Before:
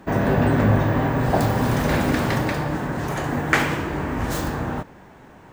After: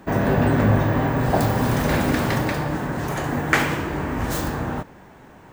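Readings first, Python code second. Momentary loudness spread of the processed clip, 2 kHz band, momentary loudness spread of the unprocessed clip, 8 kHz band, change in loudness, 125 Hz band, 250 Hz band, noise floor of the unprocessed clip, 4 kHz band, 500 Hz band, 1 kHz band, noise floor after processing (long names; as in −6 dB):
8 LU, 0.0 dB, 8 LU, +1.5 dB, 0.0 dB, 0.0 dB, 0.0 dB, −46 dBFS, +0.5 dB, 0.0 dB, 0.0 dB, −46 dBFS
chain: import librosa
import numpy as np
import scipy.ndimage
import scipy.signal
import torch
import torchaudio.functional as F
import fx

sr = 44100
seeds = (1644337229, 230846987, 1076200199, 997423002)

y = fx.high_shelf(x, sr, hz=11000.0, db=5.0)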